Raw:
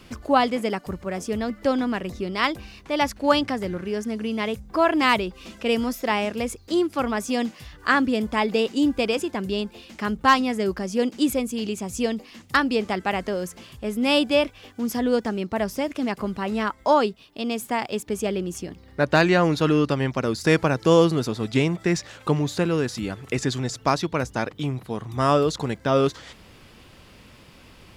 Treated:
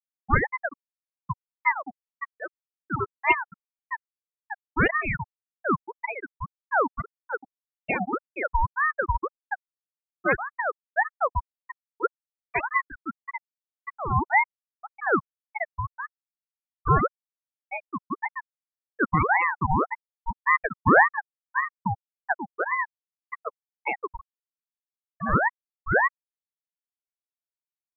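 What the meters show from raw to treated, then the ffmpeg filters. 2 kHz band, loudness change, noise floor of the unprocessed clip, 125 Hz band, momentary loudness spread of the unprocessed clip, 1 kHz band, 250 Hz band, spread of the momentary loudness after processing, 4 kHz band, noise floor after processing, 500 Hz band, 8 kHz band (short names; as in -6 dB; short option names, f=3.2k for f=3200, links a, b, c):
+2.0 dB, -3.0 dB, -50 dBFS, -5.0 dB, 10 LU, -0.5 dB, -11.5 dB, 17 LU, under -20 dB, under -85 dBFS, -9.5 dB, under -40 dB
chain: -filter_complex "[0:a]acrossover=split=230 2100:gain=0.141 1 0.1[a][b][c];[a][b][c]amix=inputs=3:normalize=0,afftfilt=real='re*gte(hypot(re,im),0.501)':imag='im*gte(hypot(re,im),0.501)':win_size=1024:overlap=0.75,equalizer=f=125:t=o:w=1:g=-4,equalizer=f=250:t=o:w=1:g=-6,equalizer=f=1k:t=o:w=1:g=-10,equalizer=f=8k:t=o:w=1:g=-6,aeval=exprs='val(0)*sin(2*PI*1000*n/s+1000*0.55/1.8*sin(2*PI*1.8*n/s))':c=same,volume=7.5dB"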